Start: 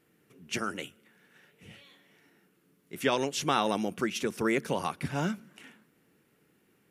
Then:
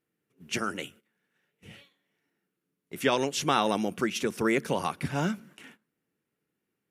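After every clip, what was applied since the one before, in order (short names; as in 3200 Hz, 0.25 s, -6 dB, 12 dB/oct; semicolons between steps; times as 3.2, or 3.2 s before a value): gate -54 dBFS, range -17 dB; gain +2 dB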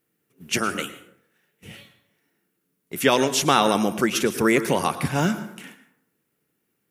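high shelf 10000 Hz +11 dB; plate-style reverb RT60 0.68 s, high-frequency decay 0.55×, pre-delay 95 ms, DRR 12 dB; gain +6.5 dB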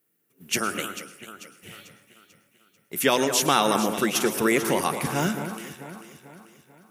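HPF 130 Hz 6 dB/oct; high shelf 9300 Hz +9.5 dB; echo with dull and thin repeats by turns 0.221 s, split 2100 Hz, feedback 67%, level -9 dB; gain -2.5 dB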